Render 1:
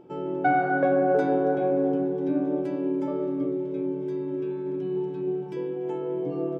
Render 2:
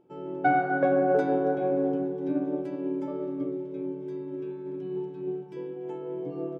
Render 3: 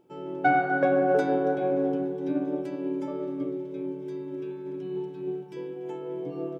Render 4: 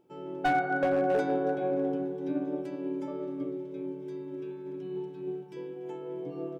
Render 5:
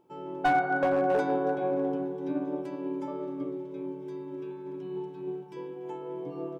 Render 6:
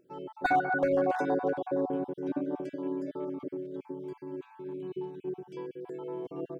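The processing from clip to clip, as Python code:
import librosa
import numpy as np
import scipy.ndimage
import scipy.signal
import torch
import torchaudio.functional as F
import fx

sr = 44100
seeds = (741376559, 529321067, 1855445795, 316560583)

y1 = fx.upward_expand(x, sr, threshold_db=-42.0, expansion=1.5)
y2 = fx.high_shelf(y1, sr, hz=2300.0, db=9.0)
y3 = np.clip(y2, -10.0 ** (-16.5 / 20.0), 10.0 ** (-16.5 / 20.0))
y3 = y3 * 10.0 ** (-3.5 / 20.0)
y4 = fx.peak_eq(y3, sr, hz=990.0, db=9.5, octaves=0.47)
y5 = fx.spec_dropout(y4, sr, seeds[0], share_pct=39)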